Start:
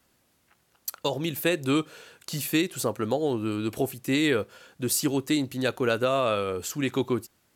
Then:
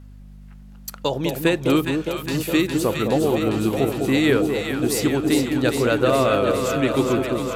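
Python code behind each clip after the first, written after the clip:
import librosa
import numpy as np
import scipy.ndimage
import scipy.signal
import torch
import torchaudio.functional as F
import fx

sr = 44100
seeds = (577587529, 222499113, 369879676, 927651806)

y = fx.high_shelf(x, sr, hz=4600.0, db=-7.0)
y = fx.add_hum(y, sr, base_hz=50, snr_db=19)
y = fx.echo_alternate(y, sr, ms=205, hz=850.0, feedback_pct=86, wet_db=-4.5)
y = y * 10.0 ** (5.0 / 20.0)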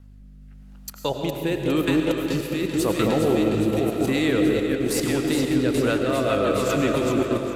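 y = fx.level_steps(x, sr, step_db=12)
y = fx.rotary_switch(y, sr, hz=0.9, then_hz=8.0, switch_at_s=5.56)
y = fx.rev_freeverb(y, sr, rt60_s=2.5, hf_ratio=0.75, predelay_ms=60, drr_db=4.0)
y = y * 10.0 ** (3.5 / 20.0)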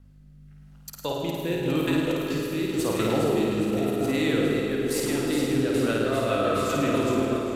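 y = fx.room_flutter(x, sr, wall_m=9.1, rt60_s=0.96)
y = y * 10.0 ** (-5.0 / 20.0)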